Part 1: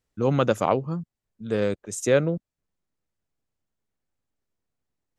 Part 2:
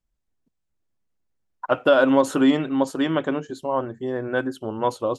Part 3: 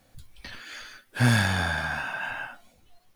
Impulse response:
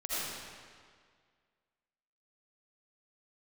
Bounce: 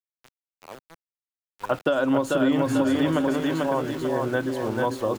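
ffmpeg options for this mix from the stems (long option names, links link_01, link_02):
-filter_complex "[0:a]bass=frequency=250:gain=-9,treble=frequency=4000:gain=-1,aeval=exprs='val(0)*pow(10,-19*(0.5-0.5*cos(2*PI*1.1*n/s))/20)':channel_layout=same,volume=-11dB[link_01];[1:a]lowshelf=frequency=71:gain=7,volume=0dB,asplit=3[link_02][link_03][link_04];[link_03]volume=-4dB[link_05];[2:a]adelay=1450,volume=-6.5dB[link_06];[link_04]apad=whole_len=202948[link_07];[link_06][link_07]sidechaincompress=threshold=-30dB:ratio=8:attack=16:release=148[link_08];[link_05]aecho=0:1:441|882|1323|1764|2205|2646:1|0.42|0.176|0.0741|0.0311|0.0131[link_09];[link_01][link_02][link_08][link_09]amix=inputs=4:normalize=0,aeval=exprs='val(0)*gte(abs(val(0)),0.015)':channel_layout=same,acrossover=split=200[link_10][link_11];[link_11]acompressor=threshold=-20dB:ratio=6[link_12];[link_10][link_12]amix=inputs=2:normalize=0"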